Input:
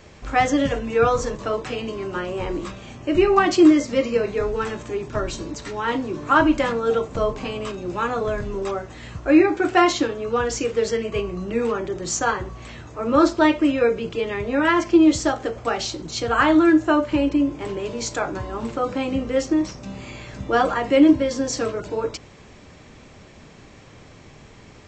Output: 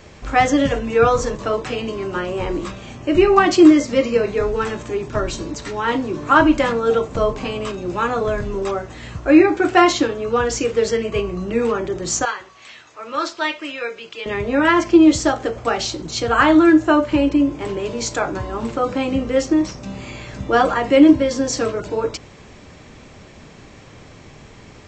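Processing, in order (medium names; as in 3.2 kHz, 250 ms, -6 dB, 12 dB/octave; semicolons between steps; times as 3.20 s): 12.25–14.26 s: band-pass filter 3.5 kHz, Q 0.63; trim +3.5 dB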